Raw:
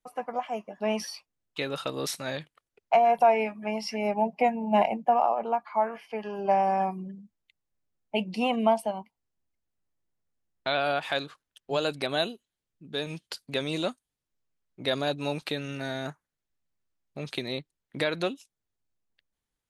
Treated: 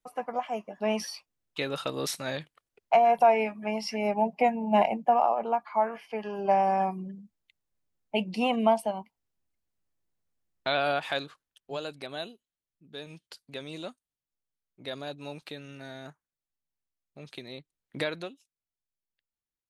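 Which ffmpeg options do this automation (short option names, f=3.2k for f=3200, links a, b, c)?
-af "volume=8dB,afade=t=out:st=10.88:d=1.02:silence=0.334965,afade=t=in:st=17.57:d=0.41:silence=0.398107,afade=t=out:st=17.98:d=0.32:silence=0.266073"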